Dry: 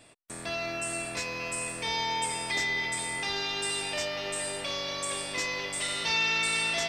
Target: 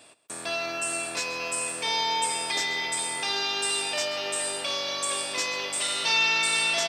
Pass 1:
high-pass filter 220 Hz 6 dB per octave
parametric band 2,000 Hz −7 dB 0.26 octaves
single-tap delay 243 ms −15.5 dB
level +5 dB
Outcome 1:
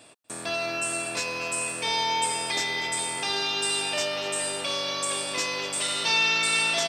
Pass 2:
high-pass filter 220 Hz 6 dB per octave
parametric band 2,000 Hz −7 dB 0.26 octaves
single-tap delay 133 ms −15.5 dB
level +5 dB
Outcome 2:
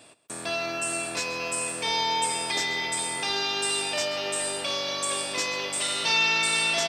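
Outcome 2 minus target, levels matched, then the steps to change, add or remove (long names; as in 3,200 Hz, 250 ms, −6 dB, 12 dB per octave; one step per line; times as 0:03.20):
250 Hz band +3.5 dB
change: high-pass filter 470 Hz 6 dB per octave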